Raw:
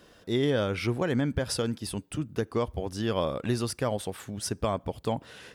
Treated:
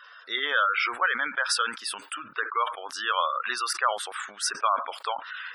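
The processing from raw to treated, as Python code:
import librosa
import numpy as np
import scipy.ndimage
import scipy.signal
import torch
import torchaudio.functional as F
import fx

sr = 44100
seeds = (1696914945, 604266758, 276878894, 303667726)

y = fx.highpass_res(x, sr, hz=1300.0, q=2.9)
y = fx.spec_gate(y, sr, threshold_db=-25, keep='strong')
y = fx.high_shelf(y, sr, hz=12000.0, db=-7.5)
y = fx.spec_gate(y, sr, threshold_db=-20, keep='strong')
y = fx.sustainer(y, sr, db_per_s=130.0)
y = y * librosa.db_to_amplitude(7.0)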